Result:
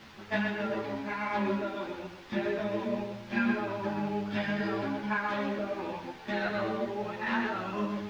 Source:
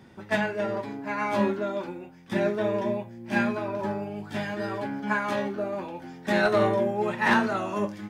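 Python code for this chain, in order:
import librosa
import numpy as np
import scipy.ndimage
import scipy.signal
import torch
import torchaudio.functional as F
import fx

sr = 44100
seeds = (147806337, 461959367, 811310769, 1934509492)

y = fx.rider(x, sr, range_db=5, speed_s=0.5)
y = fx.high_shelf(y, sr, hz=2400.0, db=12.0)
y = fx.echo_feedback(y, sr, ms=128, feedback_pct=30, wet_db=-5.0)
y = fx.quant_dither(y, sr, seeds[0], bits=6, dither='triangular')
y = fx.air_absorb(y, sr, metres=260.0)
y = fx.ensemble(y, sr)
y = y * 10.0 ** (-4.0 / 20.0)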